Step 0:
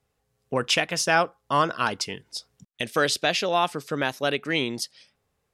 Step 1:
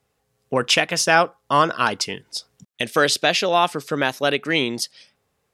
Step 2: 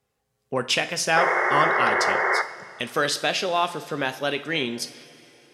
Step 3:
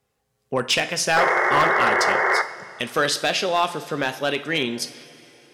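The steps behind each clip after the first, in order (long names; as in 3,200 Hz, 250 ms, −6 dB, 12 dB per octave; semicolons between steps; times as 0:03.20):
low-shelf EQ 65 Hz −11 dB; level +5 dB
sound drawn into the spectrogram noise, 0:01.16–0:02.42, 340–2,200 Hz −17 dBFS; coupled-rooms reverb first 0.45 s, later 3.4 s, from −15 dB, DRR 8.5 dB; level −5.5 dB
gain into a clipping stage and back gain 14 dB; level +2.5 dB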